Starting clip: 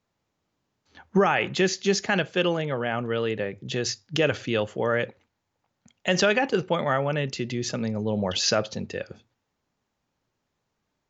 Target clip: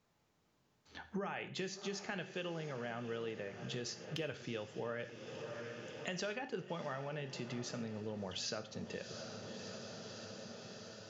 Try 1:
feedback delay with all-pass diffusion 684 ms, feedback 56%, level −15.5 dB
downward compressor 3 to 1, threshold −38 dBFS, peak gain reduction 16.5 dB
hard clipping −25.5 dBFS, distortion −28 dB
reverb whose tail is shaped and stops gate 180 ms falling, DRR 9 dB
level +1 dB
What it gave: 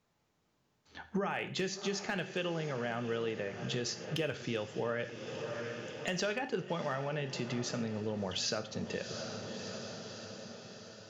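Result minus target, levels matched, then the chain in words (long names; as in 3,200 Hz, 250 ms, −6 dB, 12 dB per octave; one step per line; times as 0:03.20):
downward compressor: peak gain reduction −6.5 dB
feedback delay with all-pass diffusion 684 ms, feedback 56%, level −15.5 dB
downward compressor 3 to 1, threshold −47.5 dBFS, peak gain reduction 23 dB
hard clipping −25.5 dBFS, distortion −51 dB
reverb whose tail is shaped and stops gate 180 ms falling, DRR 9 dB
level +1 dB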